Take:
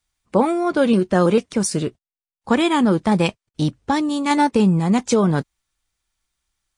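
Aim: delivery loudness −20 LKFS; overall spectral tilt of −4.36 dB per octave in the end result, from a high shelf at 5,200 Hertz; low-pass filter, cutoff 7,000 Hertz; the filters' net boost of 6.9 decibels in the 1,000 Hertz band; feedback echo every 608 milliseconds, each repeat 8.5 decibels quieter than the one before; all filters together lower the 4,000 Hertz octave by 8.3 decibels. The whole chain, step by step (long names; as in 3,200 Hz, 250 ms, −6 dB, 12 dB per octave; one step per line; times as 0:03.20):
low-pass filter 7,000 Hz
parametric band 1,000 Hz +9 dB
parametric band 4,000 Hz −8 dB
high-shelf EQ 5,200 Hz −8.5 dB
repeating echo 608 ms, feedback 38%, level −8.5 dB
level −3 dB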